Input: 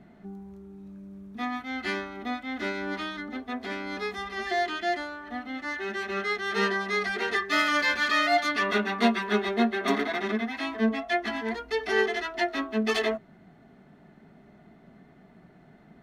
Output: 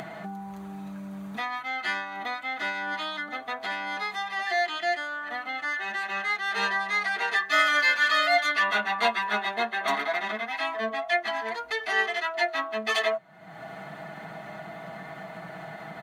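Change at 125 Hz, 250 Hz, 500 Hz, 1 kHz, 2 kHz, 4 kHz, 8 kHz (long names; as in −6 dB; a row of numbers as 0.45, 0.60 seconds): can't be measured, −10.5 dB, −2.5 dB, +2.5 dB, +3.5 dB, +2.0 dB, +1.0 dB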